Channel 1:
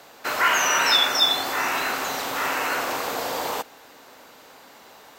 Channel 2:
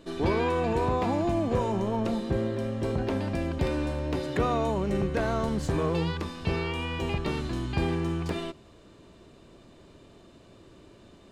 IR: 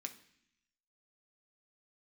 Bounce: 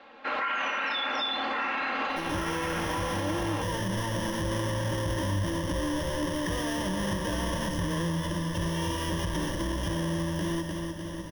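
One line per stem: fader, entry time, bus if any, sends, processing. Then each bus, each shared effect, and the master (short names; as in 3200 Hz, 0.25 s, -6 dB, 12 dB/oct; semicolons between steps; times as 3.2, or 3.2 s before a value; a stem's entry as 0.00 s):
+3.0 dB, 0.00 s, send -3.5 dB, no echo send, LPF 3200 Hz 24 dB/oct; comb 3.7 ms, depth 76%; limiter -16 dBFS, peak gain reduction 10.5 dB
+3.0 dB, 2.10 s, no send, echo send -12 dB, half-waves squared off; ripple EQ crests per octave 1.2, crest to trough 17 dB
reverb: on, RT60 0.65 s, pre-delay 3 ms
echo: feedback echo 0.3 s, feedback 44%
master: AGC gain up to 13.5 dB; resonator 230 Hz, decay 1.3 s, mix 70%; limiter -22 dBFS, peak gain reduction 11.5 dB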